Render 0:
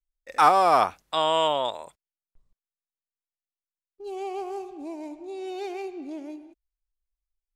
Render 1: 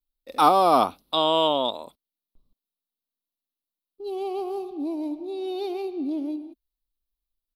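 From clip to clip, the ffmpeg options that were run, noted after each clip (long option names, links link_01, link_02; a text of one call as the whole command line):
ffmpeg -i in.wav -af "firequalizer=gain_entry='entry(130,0);entry(250,12);entry(380,4);entry(820,0);entry(1200,0);entry(1700,-13);entry(2800,0);entry(3900,8);entry(6900,-13);entry(11000,7)':delay=0.05:min_phase=1" out.wav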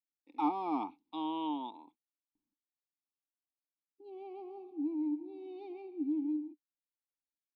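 ffmpeg -i in.wav -filter_complex "[0:a]asplit=3[link_01][link_02][link_03];[link_01]bandpass=frequency=300:width_type=q:width=8,volume=0dB[link_04];[link_02]bandpass=frequency=870:width_type=q:width=8,volume=-6dB[link_05];[link_03]bandpass=frequency=2240:width_type=q:width=8,volume=-9dB[link_06];[link_04][link_05][link_06]amix=inputs=3:normalize=0,volume=-3dB" out.wav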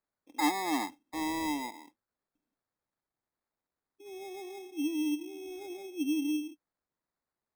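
ffmpeg -i in.wav -af "acrusher=samples=15:mix=1:aa=0.000001,volume=3dB" out.wav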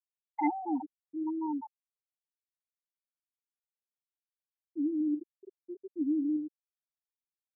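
ffmpeg -i in.wav -af "aeval=exprs='val(0)+0.5*0.0133*sgn(val(0))':channel_layout=same,afftfilt=real='re*gte(hypot(re,im),0.178)':imag='im*gte(hypot(re,im),0.178)':win_size=1024:overlap=0.75" out.wav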